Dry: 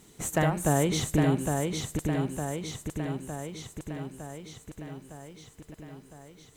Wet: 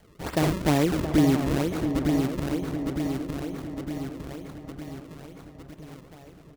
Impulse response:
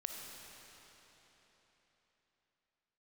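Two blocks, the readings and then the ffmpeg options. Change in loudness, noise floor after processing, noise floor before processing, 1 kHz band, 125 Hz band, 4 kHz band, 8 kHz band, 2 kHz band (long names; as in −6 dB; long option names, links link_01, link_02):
+3.5 dB, −51 dBFS, −57 dBFS, +0.5 dB, +1.0 dB, +1.0 dB, −6.0 dB, +1.0 dB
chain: -filter_complex "[0:a]asuperstop=centerf=1500:order=4:qfactor=4.1,acrusher=samples=33:mix=1:aa=0.000001:lfo=1:lforange=52.8:lforate=2.2,equalizer=frequency=64:width=4.2:gain=9,asplit=2[link_01][link_02];[link_02]adelay=674,lowpass=frequency=1500:poles=1,volume=-8dB,asplit=2[link_03][link_04];[link_04]adelay=674,lowpass=frequency=1500:poles=1,volume=0.54,asplit=2[link_05][link_06];[link_06]adelay=674,lowpass=frequency=1500:poles=1,volume=0.54,asplit=2[link_07][link_08];[link_08]adelay=674,lowpass=frequency=1500:poles=1,volume=0.54,asplit=2[link_09][link_10];[link_10]adelay=674,lowpass=frequency=1500:poles=1,volume=0.54,asplit=2[link_11][link_12];[link_12]adelay=674,lowpass=frequency=1500:poles=1,volume=0.54[link_13];[link_03][link_05][link_07][link_09][link_11][link_13]amix=inputs=6:normalize=0[link_14];[link_01][link_14]amix=inputs=2:normalize=0,adynamicequalizer=threshold=0.00631:dfrequency=300:dqfactor=2.4:tfrequency=300:tqfactor=2.4:attack=5:release=100:ratio=0.375:range=3.5:mode=boostabove:tftype=bell"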